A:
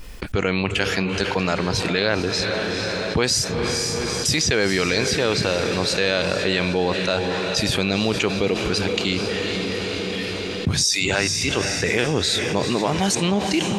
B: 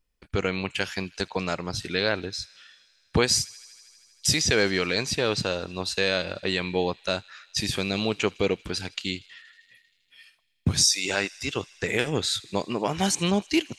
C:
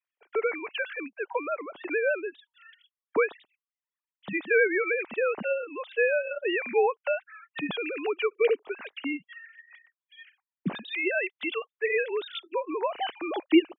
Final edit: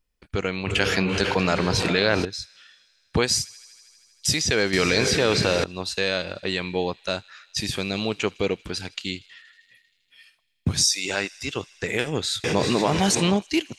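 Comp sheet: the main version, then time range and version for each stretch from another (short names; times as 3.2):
B
0.67–2.25 from A
4.73–5.64 from A
12.44–13.37 from A
not used: C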